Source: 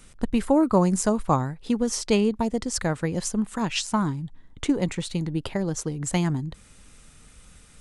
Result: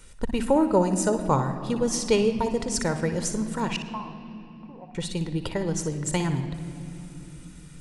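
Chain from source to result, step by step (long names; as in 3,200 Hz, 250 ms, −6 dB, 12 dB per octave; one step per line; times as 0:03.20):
0:00.65–0:01.26: notch comb filter 1,100 Hz
0:03.76–0:04.95: formant resonators in series a
convolution reverb RT60 3.0 s, pre-delay 59 ms, DRR 7.5 dB
level −1 dB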